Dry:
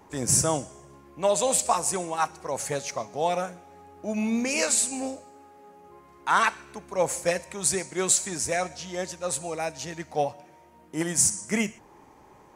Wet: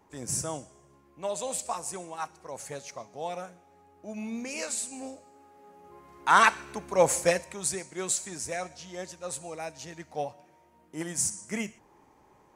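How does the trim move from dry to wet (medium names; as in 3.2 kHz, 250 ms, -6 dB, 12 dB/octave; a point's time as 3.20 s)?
4.87 s -9.5 dB
6.45 s +3 dB
7.19 s +3 dB
7.76 s -7 dB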